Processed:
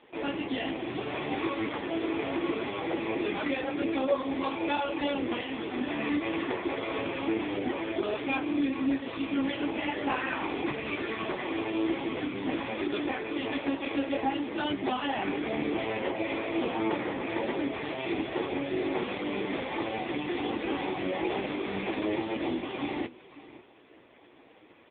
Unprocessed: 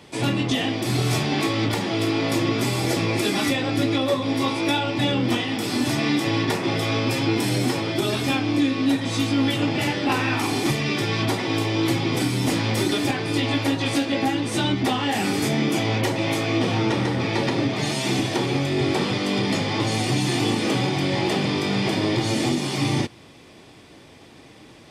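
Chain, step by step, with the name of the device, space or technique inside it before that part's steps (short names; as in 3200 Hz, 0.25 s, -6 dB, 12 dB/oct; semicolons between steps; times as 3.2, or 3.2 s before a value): 12.7–14.49 HPF 170 Hz -> 66 Hz 24 dB/oct; satellite phone (BPF 320–3100 Hz; echo 0.545 s -18 dB; gain -2.5 dB; AMR-NB 5.9 kbps 8000 Hz)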